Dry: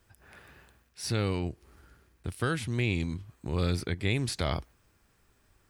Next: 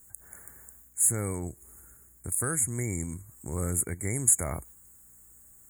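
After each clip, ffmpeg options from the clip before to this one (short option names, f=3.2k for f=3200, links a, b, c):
-af "aeval=exprs='val(0)+0.000562*(sin(2*PI*60*n/s)+sin(2*PI*2*60*n/s)/2+sin(2*PI*3*60*n/s)/3+sin(2*PI*4*60*n/s)/4+sin(2*PI*5*60*n/s)/5)':c=same,aexciter=amount=7.3:drive=8.1:freq=3.3k,afftfilt=real='re*(1-between(b*sr/4096,2300,6600))':imag='im*(1-between(b*sr/4096,2300,6600))':win_size=4096:overlap=0.75,volume=-3dB"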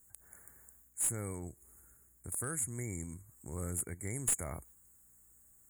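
-af "aeval=exprs='clip(val(0),-1,0.112)':c=same,volume=-8.5dB"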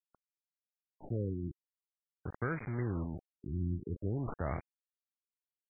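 -af "aresample=11025,acrusher=bits=7:mix=0:aa=0.000001,aresample=44100,afftfilt=real='re*lt(b*sr/1024,350*pow(2500/350,0.5+0.5*sin(2*PI*0.48*pts/sr)))':imag='im*lt(b*sr/1024,350*pow(2500/350,0.5+0.5*sin(2*PI*0.48*pts/sr)))':win_size=1024:overlap=0.75,volume=5.5dB"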